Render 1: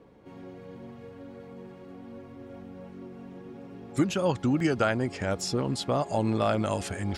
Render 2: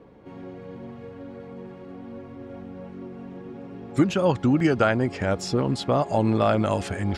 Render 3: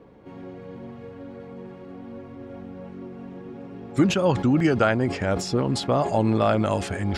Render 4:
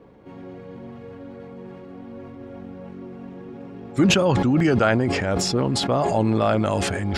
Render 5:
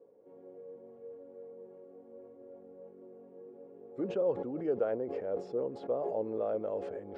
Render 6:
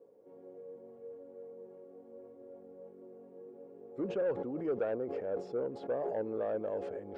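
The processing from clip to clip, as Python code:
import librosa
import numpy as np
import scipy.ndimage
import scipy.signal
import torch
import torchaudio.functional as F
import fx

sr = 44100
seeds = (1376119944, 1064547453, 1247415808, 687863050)

y1 = fx.high_shelf(x, sr, hz=5600.0, db=-11.0)
y1 = y1 * librosa.db_to_amplitude(5.0)
y2 = fx.sustainer(y1, sr, db_per_s=93.0)
y3 = fx.sustainer(y2, sr, db_per_s=20.0)
y4 = fx.bandpass_q(y3, sr, hz=480.0, q=4.7)
y4 = y4 * librosa.db_to_amplitude(-4.5)
y5 = 10.0 ** (-25.5 / 20.0) * np.tanh(y4 / 10.0 ** (-25.5 / 20.0))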